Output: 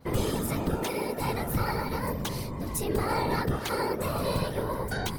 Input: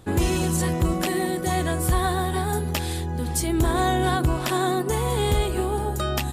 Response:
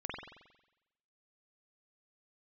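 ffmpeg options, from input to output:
-af "adynamicequalizer=threshold=0.00631:dfrequency=7100:dqfactor=1.2:tfrequency=7100:tqfactor=1.2:attack=5:release=100:ratio=0.375:range=2:mode=cutabove:tftype=bell,areverse,acompressor=mode=upward:threshold=-35dB:ratio=2.5,areverse,afftfilt=real='hypot(re,im)*cos(2*PI*random(0))':imag='hypot(re,im)*sin(2*PI*random(1))':win_size=512:overlap=0.75,asetrate=53802,aresample=44100"

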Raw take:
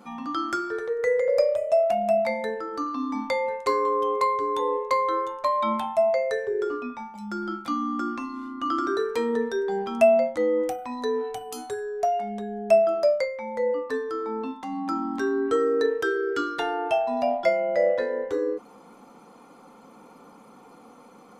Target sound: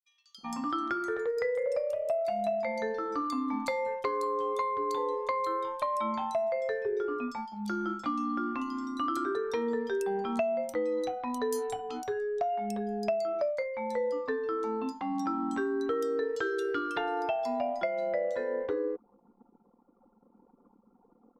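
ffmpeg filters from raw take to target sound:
ffmpeg -i in.wav -filter_complex "[0:a]anlmdn=0.398,acompressor=threshold=-28dB:ratio=6,acrossover=split=4000[link_01][link_02];[link_01]adelay=380[link_03];[link_03][link_02]amix=inputs=2:normalize=0" out.wav

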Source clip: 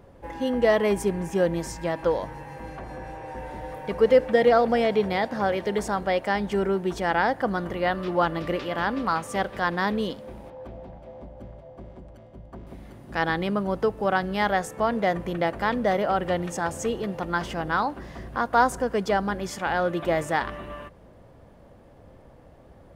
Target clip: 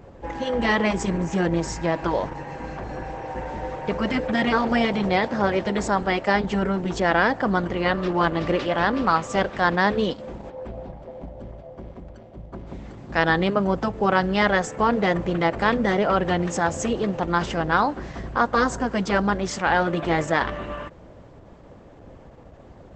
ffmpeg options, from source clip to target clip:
ffmpeg -i in.wav -af "afftfilt=real='re*lt(hypot(re,im),0.562)':imag='im*lt(hypot(re,im),0.562)':win_size=1024:overlap=0.75,volume=6dB" -ar 48000 -c:a libopus -b:a 12k out.opus

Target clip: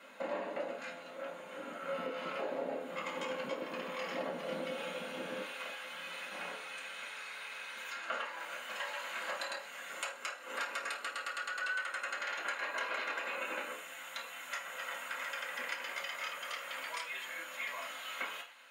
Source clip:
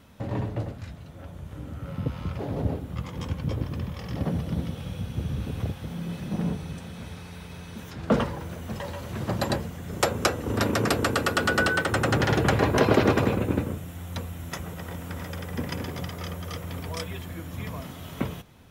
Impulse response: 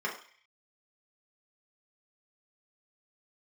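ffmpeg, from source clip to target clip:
-filter_complex "[0:a]asetnsamples=nb_out_samples=441:pad=0,asendcmd='5.42 highpass f 1200',highpass=440,acompressor=threshold=-39dB:ratio=16[link_01];[1:a]atrim=start_sample=2205,asetrate=57330,aresample=44100[link_02];[link_01][link_02]afir=irnorm=-1:irlink=0,volume=1dB"

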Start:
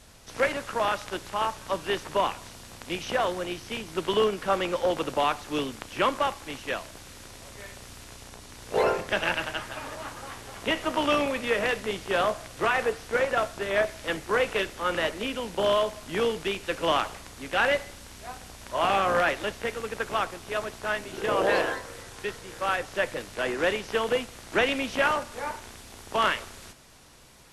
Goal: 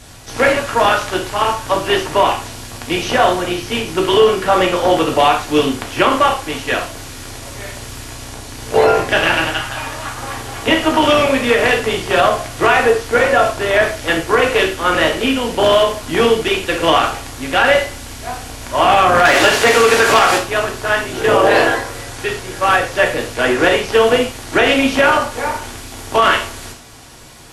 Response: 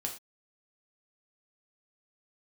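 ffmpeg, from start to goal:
-filter_complex "[0:a]asettb=1/sr,asplit=3[link_01][link_02][link_03];[link_01]atrim=end=9.534[link_04];[link_02]atrim=start=9.53:end=10.18,asetpts=PTS-STARTPTS,afade=type=in:duration=0.004:curve=qsin,afade=type=out:start_time=0.646:duration=0.004:curve=qsin,equalizer=frequency=380:width=0.71:gain=-6.5[link_05];[link_03]atrim=start=10.176[link_06];[link_04][link_05]acrossfade=duration=0.004:curve1=hsin:curve2=qsin[link_07];[link_07][link_06]acrossfade=duration=0.004:curve1=qsin:curve2=hsin,asettb=1/sr,asplit=3[link_08][link_09][link_10];[link_08]atrim=end=19.254[link_11];[link_09]atrim=start=19.25:end=20.38,asetpts=PTS-STARTPTS,afade=type=in:duration=0.004:curve=qsin,afade=type=out:start_time=1.126:duration=0.004:curve=qsin,asplit=2[link_12][link_13];[link_13]highpass=frequency=720:poles=1,volume=22dB,asoftclip=type=tanh:threshold=-13dB[link_14];[link_12][link_14]amix=inputs=2:normalize=0,lowpass=frequency=6100:poles=1,volume=-6dB[link_15];[link_10]atrim=start=20.376[link_16];[link_11][link_15]acrossfade=duration=0.004:curve1=hsin:curve2=qsin[link_17];[link_17][link_16]acrossfade=duration=0.004:curve1=qsin:curve2=hsin[link_18];[1:a]atrim=start_sample=2205[link_19];[link_18][link_19]afir=irnorm=-1:irlink=0,alimiter=level_in=13.5dB:limit=-1dB:release=50:level=0:latency=1,volume=-1dB"

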